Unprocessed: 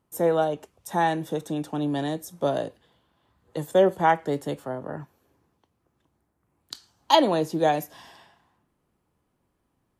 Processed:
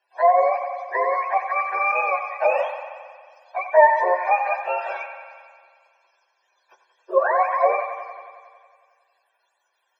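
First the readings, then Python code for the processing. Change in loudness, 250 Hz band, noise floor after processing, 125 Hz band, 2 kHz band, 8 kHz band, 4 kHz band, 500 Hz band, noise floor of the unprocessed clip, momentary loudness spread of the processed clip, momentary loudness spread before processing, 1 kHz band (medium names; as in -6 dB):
+4.0 dB, under -20 dB, -72 dBFS, under -40 dB, +9.5 dB, under -20 dB, under -15 dB, +3.5 dB, -75 dBFS, 17 LU, 18 LU, +6.5 dB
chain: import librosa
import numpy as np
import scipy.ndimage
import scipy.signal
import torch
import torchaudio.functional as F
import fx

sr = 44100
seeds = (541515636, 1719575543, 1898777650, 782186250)

p1 = fx.octave_mirror(x, sr, pivot_hz=590.0)
p2 = p1 + 0.92 * np.pad(p1, (int(1.2 * sr / 1000.0), 0))[:len(p1)]
p3 = fx.rider(p2, sr, range_db=4, speed_s=0.5)
p4 = p2 + F.gain(torch.from_numpy(p3), -2.0).numpy()
p5 = fx.spec_repair(p4, sr, seeds[0], start_s=3.95, length_s=0.29, low_hz=1300.0, high_hz=2600.0, source='both')
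p6 = scipy.signal.sosfilt(scipy.signal.cheby1(6, 3, 380.0, 'highpass', fs=sr, output='sos'), p5)
p7 = p6 + fx.echo_wet_bandpass(p6, sr, ms=91, feedback_pct=72, hz=1400.0, wet_db=-8.0, dry=0)
p8 = fx.rev_spring(p7, sr, rt60_s=1.2, pass_ms=(39, 50), chirp_ms=50, drr_db=16.0)
y = F.gain(torch.from_numpy(p8), 2.0).numpy()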